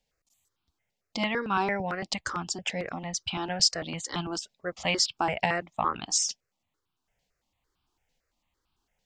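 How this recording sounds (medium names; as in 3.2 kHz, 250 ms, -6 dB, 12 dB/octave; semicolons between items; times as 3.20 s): tremolo saw up 1.1 Hz, depth 30%; notches that jump at a steady rate 8.9 Hz 330–1900 Hz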